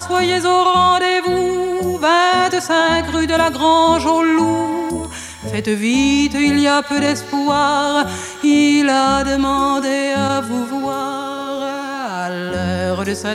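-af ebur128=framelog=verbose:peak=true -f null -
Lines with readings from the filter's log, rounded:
Integrated loudness:
  I:         -16.0 LUFS
  Threshold: -26.1 LUFS
Loudness range:
  LRA:         4.9 LU
  Threshold: -36.0 LUFS
  LRA low:   -19.5 LUFS
  LRA high:  -14.6 LUFS
True peak:
  Peak:       -1.5 dBFS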